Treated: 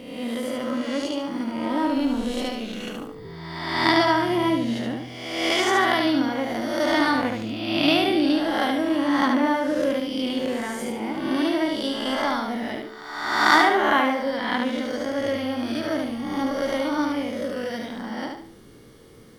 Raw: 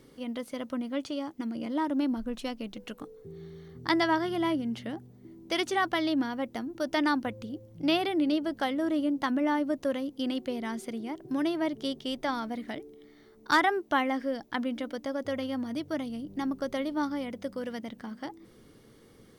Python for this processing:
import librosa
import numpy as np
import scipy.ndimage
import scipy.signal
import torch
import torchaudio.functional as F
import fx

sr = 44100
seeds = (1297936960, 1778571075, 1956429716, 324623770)

y = fx.spec_swells(x, sr, rise_s=1.18)
y = fx.echo_feedback(y, sr, ms=73, feedback_pct=35, wet_db=-4)
y = F.gain(torch.from_numpy(y), 3.0).numpy()